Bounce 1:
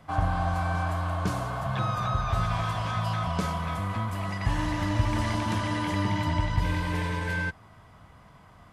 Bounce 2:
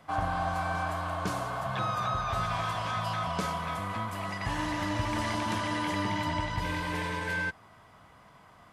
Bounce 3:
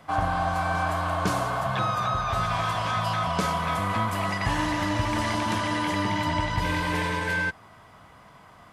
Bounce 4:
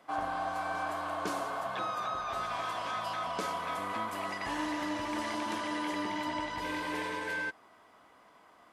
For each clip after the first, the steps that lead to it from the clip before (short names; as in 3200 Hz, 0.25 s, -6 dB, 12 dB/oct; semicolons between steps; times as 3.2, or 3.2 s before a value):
low shelf 160 Hz -12 dB
vocal rider 0.5 s; gain +5.5 dB
resonant low shelf 200 Hz -13 dB, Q 1.5; gain -8.5 dB